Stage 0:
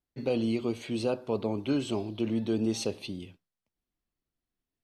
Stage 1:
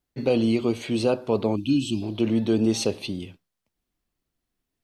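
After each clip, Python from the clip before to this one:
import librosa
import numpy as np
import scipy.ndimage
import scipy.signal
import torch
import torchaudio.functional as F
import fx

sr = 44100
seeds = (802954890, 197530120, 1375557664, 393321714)

y = fx.spec_box(x, sr, start_s=1.56, length_s=0.47, low_hz=360.0, high_hz=2400.0, gain_db=-25)
y = y * 10.0 ** (7.0 / 20.0)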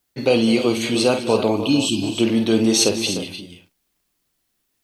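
y = fx.tilt_eq(x, sr, slope=2.0)
y = fx.echo_multitap(y, sr, ms=(49, 205, 300, 335), db=(-8.5, -15.0, -11.0, -15.0))
y = y * 10.0 ** (7.0 / 20.0)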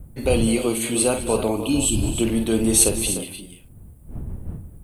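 y = fx.dmg_wind(x, sr, seeds[0], corner_hz=100.0, level_db=-27.0)
y = fx.high_shelf_res(y, sr, hz=7200.0, db=10.5, q=3.0)
y = y * 10.0 ** (-3.5 / 20.0)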